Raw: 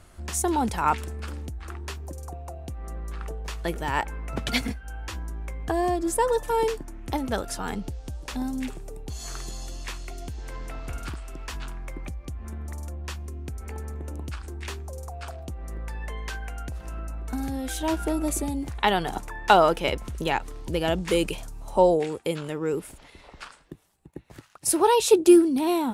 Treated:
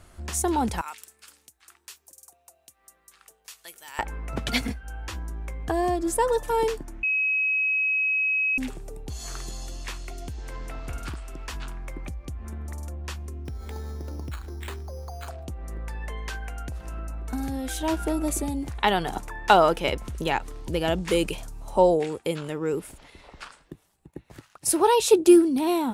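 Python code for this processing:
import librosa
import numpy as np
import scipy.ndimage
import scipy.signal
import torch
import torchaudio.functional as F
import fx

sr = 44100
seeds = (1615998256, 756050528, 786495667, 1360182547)

y = fx.differentiator(x, sr, at=(0.81, 3.99))
y = fx.resample_bad(y, sr, factor=8, down='filtered', up='hold', at=(13.45, 15.28))
y = fx.edit(y, sr, fx.bleep(start_s=7.03, length_s=1.55, hz=2550.0, db=-21.0), tone=tone)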